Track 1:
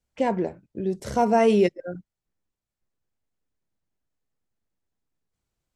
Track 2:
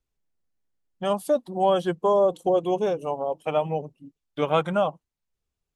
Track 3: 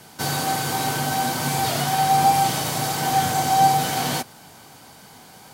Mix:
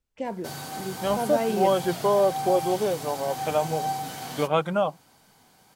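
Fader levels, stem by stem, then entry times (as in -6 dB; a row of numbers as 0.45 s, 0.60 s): -8.0 dB, -1.0 dB, -12.5 dB; 0.00 s, 0.00 s, 0.25 s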